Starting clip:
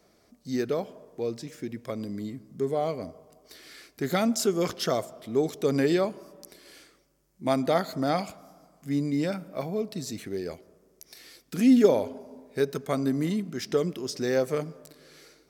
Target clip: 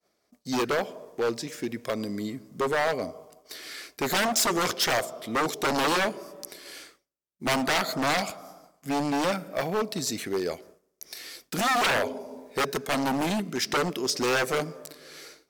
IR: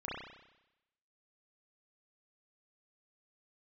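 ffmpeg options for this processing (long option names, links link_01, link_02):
-af "aeval=exprs='0.0531*(abs(mod(val(0)/0.0531+3,4)-2)-1)':channel_layout=same,lowshelf=frequency=260:gain=-11.5,agate=range=-33dB:threshold=-54dB:ratio=3:detection=peak,volume=8.5dB"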